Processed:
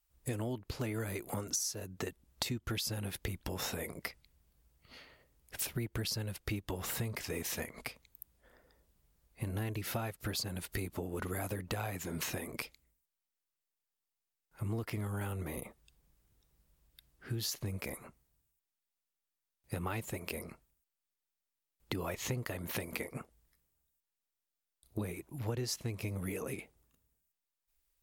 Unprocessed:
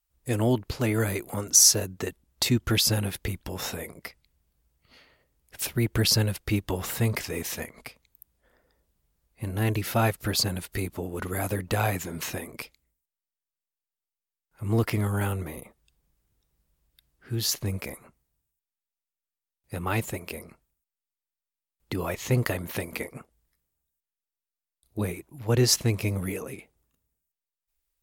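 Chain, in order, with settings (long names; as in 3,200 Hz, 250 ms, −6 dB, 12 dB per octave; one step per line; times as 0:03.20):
downward compressor 10 to 1, threshold −35 dBFS, peak gain reduction 21.5 dB
level +1 dB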